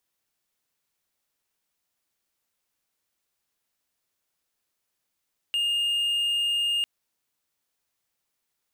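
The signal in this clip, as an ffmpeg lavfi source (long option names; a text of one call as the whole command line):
ffmpeg -f lavfi -i "aevalsrc='0.0944*(1-4*abs(mod(2830*t+0.25,1)-0.5))':duration=1.3:sample_rate=44100" out.wav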